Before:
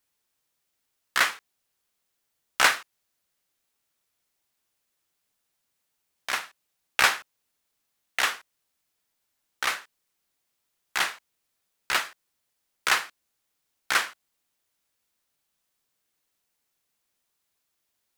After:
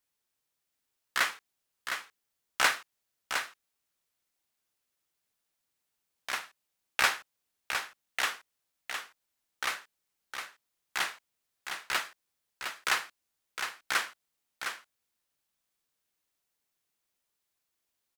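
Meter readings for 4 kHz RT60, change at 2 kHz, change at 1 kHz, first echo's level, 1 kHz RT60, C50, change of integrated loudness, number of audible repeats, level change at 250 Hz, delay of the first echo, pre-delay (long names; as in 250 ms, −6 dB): no reverb audible, −4.5 dB, −4.5 dB, −7.0 dB, no reverb audible, no reverb audible, −7.0 dB, 1, −4.5 dB, 710 ms, no reverb audible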